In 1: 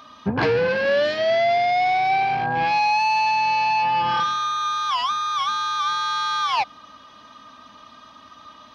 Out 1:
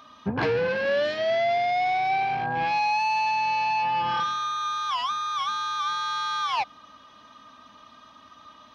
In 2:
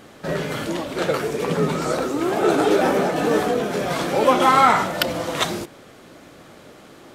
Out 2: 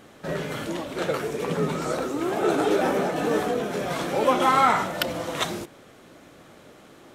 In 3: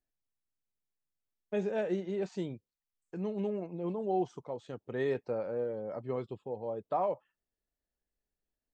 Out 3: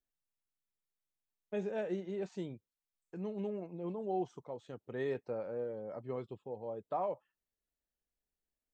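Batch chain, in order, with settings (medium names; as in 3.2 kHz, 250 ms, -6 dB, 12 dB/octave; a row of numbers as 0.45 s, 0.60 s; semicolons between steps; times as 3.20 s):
peaking EQ 4.7 kHz -3.5 dB 0.21 oct; trim -4.5 dB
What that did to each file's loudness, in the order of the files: -4.5 LU, -4.5 LU, -4.5 LU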